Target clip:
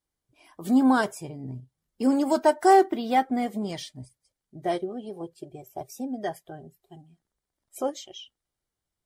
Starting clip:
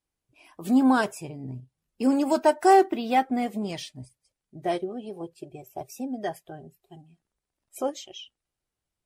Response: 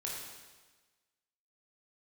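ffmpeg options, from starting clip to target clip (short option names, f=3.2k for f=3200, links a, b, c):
-af "bandreject=f=2.6k:w=6.1"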